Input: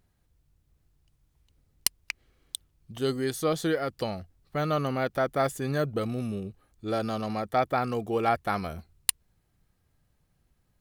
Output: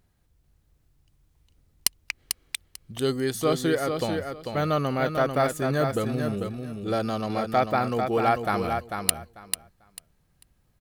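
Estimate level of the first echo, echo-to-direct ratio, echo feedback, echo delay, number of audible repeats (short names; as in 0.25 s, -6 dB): -6.0 dB, -6.0 dB, 19%, 0.444 s, 3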